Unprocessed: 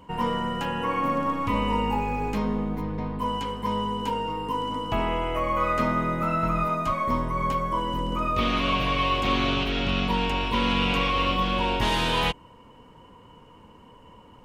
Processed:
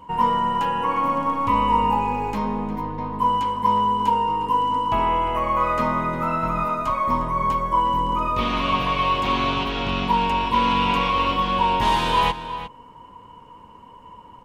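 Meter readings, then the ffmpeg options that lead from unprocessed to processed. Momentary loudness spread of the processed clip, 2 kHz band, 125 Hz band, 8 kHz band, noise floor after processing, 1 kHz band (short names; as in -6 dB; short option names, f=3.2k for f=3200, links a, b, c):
5 LU, +0.5 dB, 0.0 dB, n/a, -46 dBFS, +7.5 dB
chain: -filter_complex "[0:a]equalizer=f=970:t=o:w=0.33:g=10.5,asplit=2[a][b];[b]adelay=355.7,volume=-11dB,highshelf=f=4k:g=-8[c];[a][c]amix=inputs=2:normalize=0"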